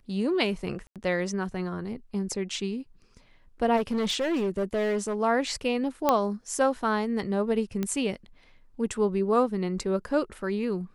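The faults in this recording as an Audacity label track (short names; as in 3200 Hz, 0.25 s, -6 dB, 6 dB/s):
0.870000	0.960000	gap 87 ms
3.760000	5.150000	clipped -23 dBFS
6.090000	6.090000	pop -8 dBFS
7.830000	7.830000	pop -16 dBFS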